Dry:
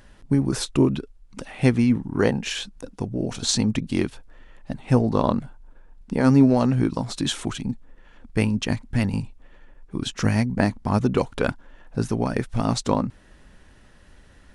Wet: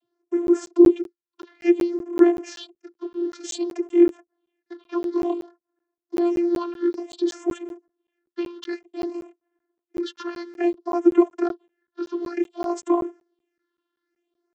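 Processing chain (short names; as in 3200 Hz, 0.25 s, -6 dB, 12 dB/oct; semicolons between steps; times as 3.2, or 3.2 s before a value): gate -38 dBFS, range -17 dB; bell 790 Hz -4.5 dB 2.7 oct; in parallel at -9.5 dB: requantised 6-bit, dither none; on the sum: phaser stages 6, 0.56 Hz, lowest notch 570–4600 Hz; vocoder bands 32, saw 346 Hz; crackling interface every 0.19 s, samples 512, zero, from 0.47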